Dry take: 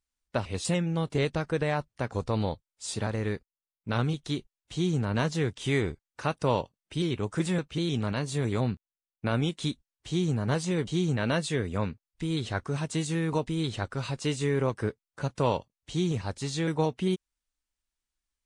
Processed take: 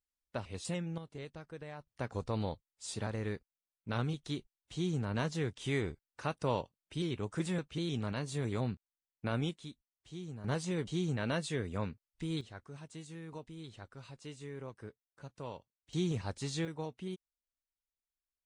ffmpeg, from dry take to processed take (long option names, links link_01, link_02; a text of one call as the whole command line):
ffmpeg -i in.wav -af "asetnsamples=nb_out_samples=441:pad=0,asendcmd='0.98 volume volume -18.5dB;1.87 volume volume -7dB;9.57 volume volume -17dB;10.44 volume volume -7dB;12.41 volume volume -18dB;15.93 volume volume -5.5dB;16.65 volume volume -14dB',volume=-10dB" out.wav